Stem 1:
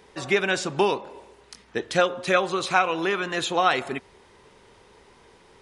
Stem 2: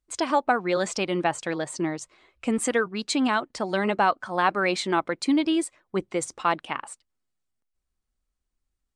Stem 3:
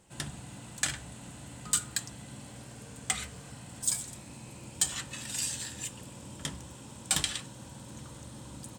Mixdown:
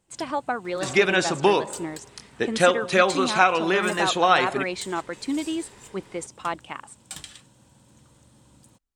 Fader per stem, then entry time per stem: +2.5 dB, -5.0 dB, -10.0 dB; 0.65 s, 0.00 s, 0.00 s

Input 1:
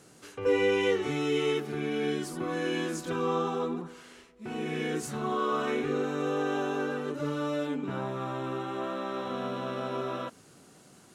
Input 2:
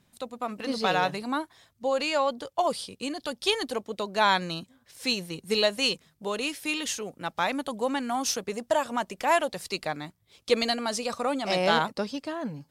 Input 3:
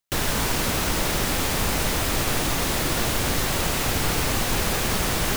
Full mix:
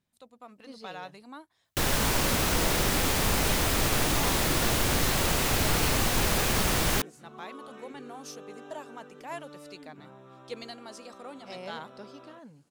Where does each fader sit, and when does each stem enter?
-17.0 dB, -16.0 dB, -2.0 dB; 2.10 s, 0.00 s, 1.65 s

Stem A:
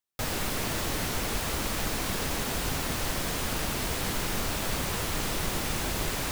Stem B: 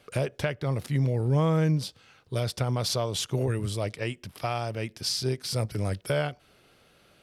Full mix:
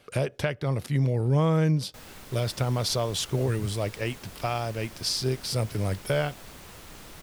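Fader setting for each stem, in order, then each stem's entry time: -15.5 dB, +1.0 dB; 1.75 s, 0.00 s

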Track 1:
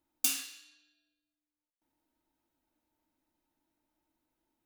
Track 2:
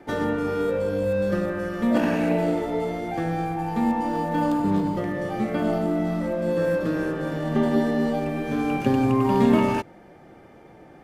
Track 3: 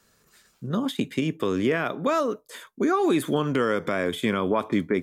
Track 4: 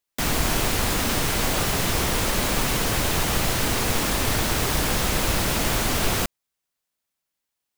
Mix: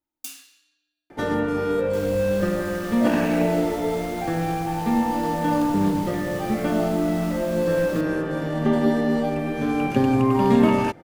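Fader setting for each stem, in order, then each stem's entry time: -7.0 dB, +1.5 dB, mute, -17.5 dB; 0.00 s, 1.10 s, mute, 1.75 s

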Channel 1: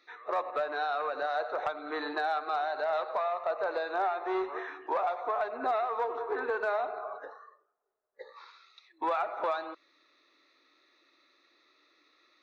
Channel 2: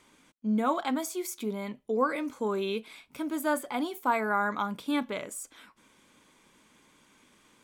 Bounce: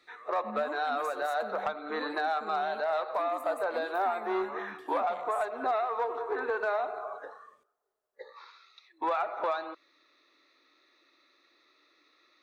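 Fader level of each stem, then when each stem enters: +0.5 dB, -16.0 dB; 0.00 s, 0.00 s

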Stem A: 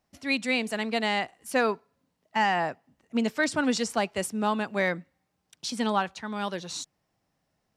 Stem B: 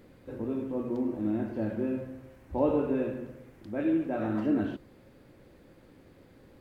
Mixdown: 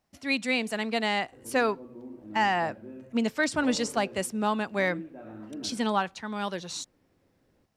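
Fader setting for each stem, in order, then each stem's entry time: -0.5 dB, -13.0 dB; 0.00 s, 1.05 s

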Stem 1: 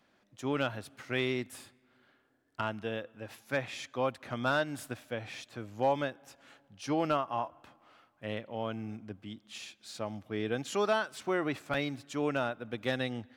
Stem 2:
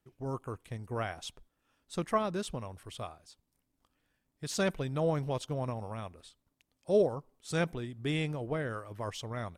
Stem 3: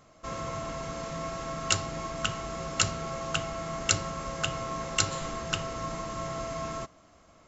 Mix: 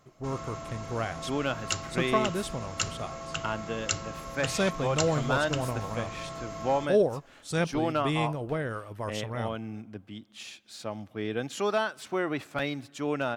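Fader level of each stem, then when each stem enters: +1.5 dB, +3.0 dB, -4.5 dB; 0.85 s, 0.00 s, 0.00 s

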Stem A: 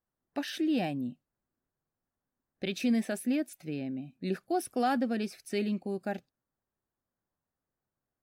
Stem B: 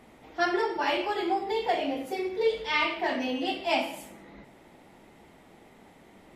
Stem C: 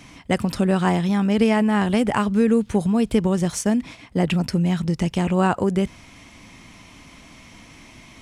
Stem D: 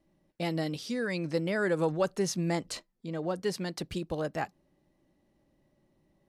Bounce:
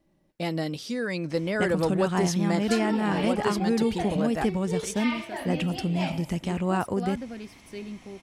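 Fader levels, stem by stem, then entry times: -7.0 dB, -7.0 dB, -7.0 dB, +2.5 dB; 2.20 s, 2.30 s, 1.30 s, 0.00 s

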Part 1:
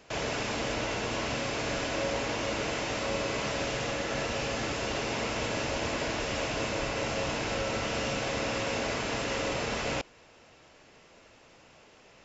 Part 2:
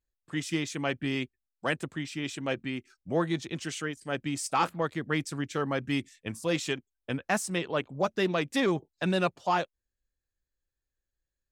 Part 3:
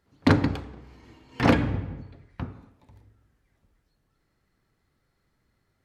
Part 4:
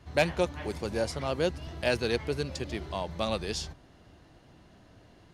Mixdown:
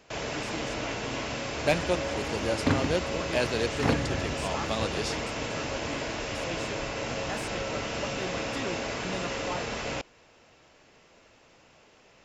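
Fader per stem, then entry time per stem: -1.5 dB, -10.5 dB, -6.5 dB, -0.5 dB; 0.00 s, 0.00 s, 2.40 s, 1.50 s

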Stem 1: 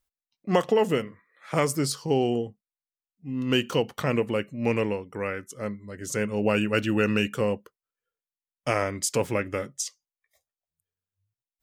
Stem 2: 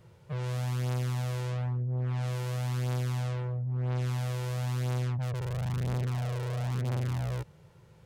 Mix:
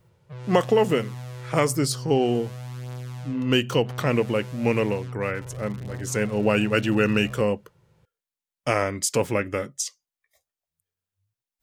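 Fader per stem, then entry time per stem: +2.5 dB, -4.5 dB; 0.00 s, 0.00 s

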